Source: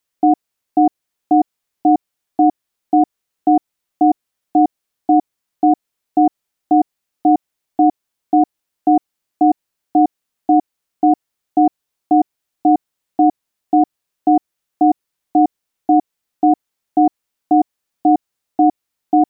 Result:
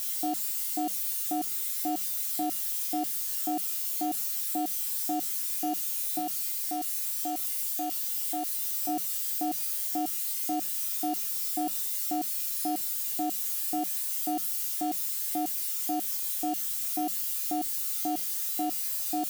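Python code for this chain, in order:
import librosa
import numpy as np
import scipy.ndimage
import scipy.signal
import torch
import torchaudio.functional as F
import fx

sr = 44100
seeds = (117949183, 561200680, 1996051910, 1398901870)

y = x + 0.5 * 10.0 ** (-13.0 / 20.0) * np.diff(np.sign(x), prepend=np.sign(x[:1]))
y = fx.low_shelf(y, sr, hz=260.0, db=-10.5, at=(6.19, 8.89))
y = fx.comb_fb(y, sr, f0_hz=190.0, decay_s=0.52, harmonics='odd', damping=0.0, mix_pct=90)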